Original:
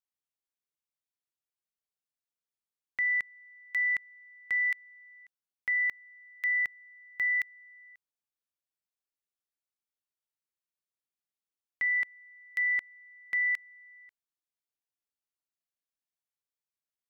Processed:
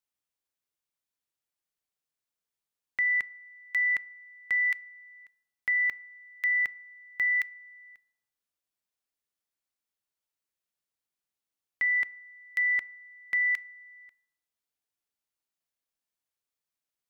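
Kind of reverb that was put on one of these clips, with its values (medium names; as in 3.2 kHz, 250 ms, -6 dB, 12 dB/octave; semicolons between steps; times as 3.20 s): FDN reverb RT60 0.82 s, low-frequency decay 0.9×, high-frequency decay 0.4×, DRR 19 dB; trim +3 dB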